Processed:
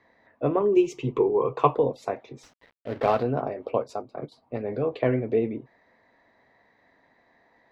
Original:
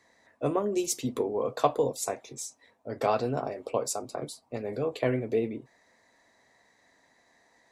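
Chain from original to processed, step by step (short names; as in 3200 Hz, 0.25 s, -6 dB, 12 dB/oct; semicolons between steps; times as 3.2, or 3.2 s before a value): 0.6–1.75 ripple EQ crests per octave 0.72, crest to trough 12 dB; 2.43–3.23 companded quantiser 4-bit; 3.82–4.32 gate -33 dBFS, range -9 dB; air absorption 340 m; gain +4.5 dB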